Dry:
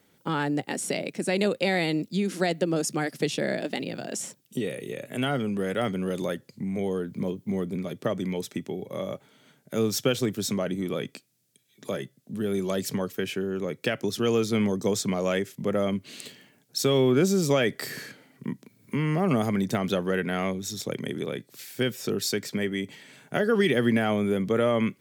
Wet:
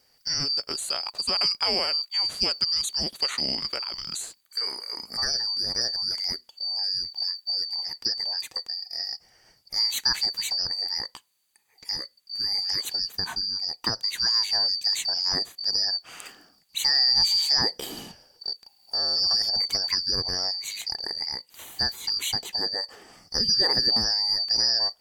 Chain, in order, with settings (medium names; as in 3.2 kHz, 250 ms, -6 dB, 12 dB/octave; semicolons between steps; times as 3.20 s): four frequency bands reordered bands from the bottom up 2341